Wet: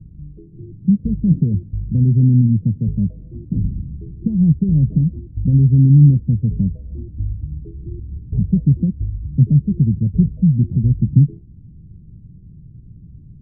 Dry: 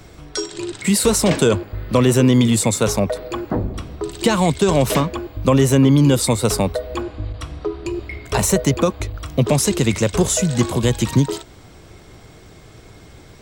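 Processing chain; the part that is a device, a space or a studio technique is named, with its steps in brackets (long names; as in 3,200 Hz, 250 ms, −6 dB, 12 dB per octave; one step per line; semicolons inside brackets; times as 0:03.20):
the neighbour's flat through the wall (low-pass filter 200 Hz 24 dB per octave; parametric band 160 Hz +5 dB 0.56 octaves)
level +4 dB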